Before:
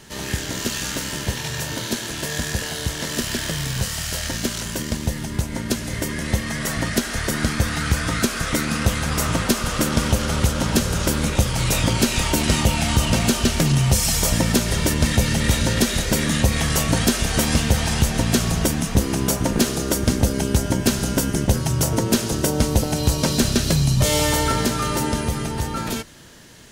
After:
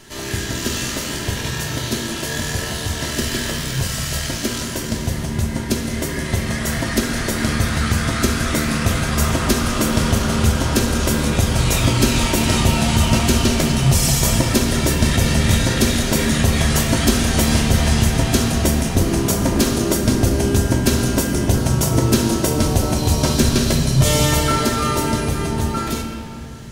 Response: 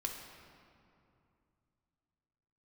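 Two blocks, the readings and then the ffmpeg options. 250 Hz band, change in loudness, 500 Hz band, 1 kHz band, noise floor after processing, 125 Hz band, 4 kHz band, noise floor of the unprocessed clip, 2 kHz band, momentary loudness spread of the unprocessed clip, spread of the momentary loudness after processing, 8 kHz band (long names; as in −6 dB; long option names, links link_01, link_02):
+3.5 dB, +3.0 dB, +3.0 dB, +3.0 dB, −26 dBFS, +3.5 dB, +2.0 dB, −30 dBFS, +2.0 dB, 7 LU, 7 LU, +1.5 dB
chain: -filter_complex "[1:a]atrim=start_sample=2205[link_01];[0:a][link_01]afir=irnorm=-1:irlink=0,volume=2dB"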